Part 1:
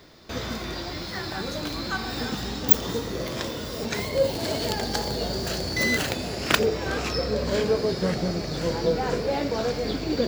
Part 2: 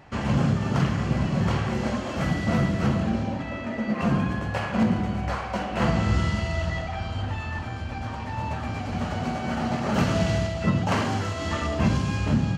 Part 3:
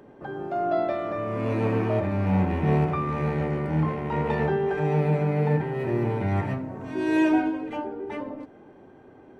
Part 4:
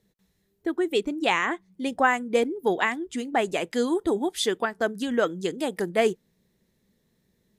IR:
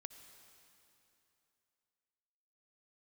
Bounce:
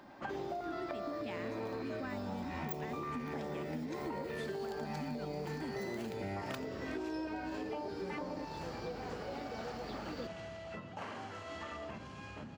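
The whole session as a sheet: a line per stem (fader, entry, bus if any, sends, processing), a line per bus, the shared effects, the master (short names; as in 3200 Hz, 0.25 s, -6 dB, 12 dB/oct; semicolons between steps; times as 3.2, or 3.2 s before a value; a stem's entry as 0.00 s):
-17.5 dB, 0.00 s, no bus, no send, dry
-11.0 dB, 0.10 s, bus A, no send, compressor, threshold -26 dBFS, peak gain reduction 9.5 dB
+2.0 dB, 0.00 s, bus A, no send, stepped notch 3.3 Hz 440–4000 Hz
-11.0 dB, 0.00 s, bus A, no send, resonant low shelf 340 Hz +13 dB, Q 3
bus A: 0.0 dB, tone controls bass -12 dB, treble -7 dB; compressor, threshold -30 dBFS, peak gain reduction 10 dB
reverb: off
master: compressor, threshold -37 dBFS, peak gain reduction 11 dB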